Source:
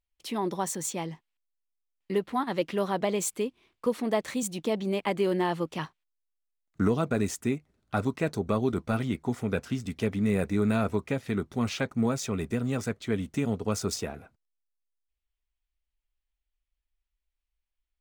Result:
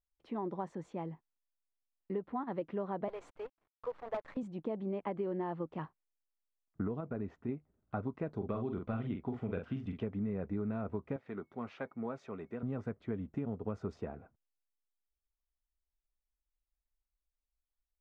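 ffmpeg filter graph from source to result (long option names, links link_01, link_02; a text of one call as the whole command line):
ffmpeg -i in.wav -filter_complex "[0:a]asettb=1/sr,asplit=3[link_01][link_02][link_03];[link_01]atrim=end=3.084[link_04];[link_02]atrim=start=3.08:end=4.37,asetpts=PTS-STARTPTS,afade=type=in:duration=0.004:curve=qsin,afade=type=out:start_time=1.286:duration=0.004:curve=qsin,highpass=frequency=520:width=0.5412,highpass=frequency=520:width=1.3066,aeval=exprs='(mod(7.94*val(0)+1,2)-1)/7.94':channel_layout=same,acrusher=bits=7:dc=4:mix=0:aa=0.000001[link_05];[link_03]atrim=start=4.366[link_06];[link_04][link_05]acrossfade=duration=0.004:curve1=hsin:curve2=qsin[link_07];[link_07][link_06]acrossfade=duration=0.004:curve1=qsin:curve2=hsin,asettb=1/sr,asplit=3[link_08][link_09][link_10];[link_08]atrim=end=7.004[link_11];[link_09]atrim=start=7:end=7.49,asetpts=PTS-STARTPTS,afade=type=in:duration=0.004:curve=qsin,afade=type=out:start_time=0.486:duration=0.004:curve=qsin,lowpass=3600,acompressor=threshold=-34dB:ratio=1.5:attack=3.2:release=140:knee=1:detection=peak[link_12];[link_10]atrim=start=7.486[link_13];[link_11][link_12]acrossfade=duration=0.004:curve1=hsin:curve2=qsin[link_14];[link_14][link_13]acrossfade=duration=0.004:curve1=qsin:curve2=hsin,asettb=1/sr,asplit=3[link_15][link_16][link_17];[link_15]atrim=end=8.364[link_18];[link_16]atrim=start=8.36:end=10.03,asetpts=PTS-STARTPTS,afade=type=in:duration=0.004:curve=qsin,afade=type=out:start_time=1.666:duration=0.004:curve=qsin,equalizer=frequency=3100:width_type=o:width=0.88:gain=9.5,bandreject=frequency=890:width=20,asplit=2[link_19][link_20];[link_20]adelay=44,volume=-6dB[link_21];[link_19][link_21]amix=inputs=2:normalize=0,atrim=end_sample=73647[link_22];[link_17]atrim=start=10.026[link_23];[link_18][link_22]acrossfade=duration=0.004:curve1=hsin:curve2=qsin[link_24];[link_24][link_23]acrossfade=duration=0.004:curve1=qsin:curve2=hsin,asettb=1/sr,asplit=3[link_25][link_26][link_27];[link_25]atrim=end=11.164[link_28];[link_26]atrim=start=11.16:end=12.63,asetpts=PTS-STARTPTS,afade=type=in:duration=0.004:curve=qsin,afade=type=out:start_time=1.466:duration=0.004:curve=qsin,highpass=frequency=570:poles=1,aeval=exprs='val(0)+0.000562*sin(2*PI*2200*n/s)':channel_layout=same[link_29];[link_27]atrim=start=12.626[link_30];[link_28][link_29]acrossfade=duration=0.004:curve1=hsin:curve2=qsin[link_31];[link_31][link_30]acrossfade=duration=0.004:curve1=qsin:curve2=hsin,lowpass=1200,acompressor=threshold=-27dB:ratio=6,volume=-5.5dB" out.wav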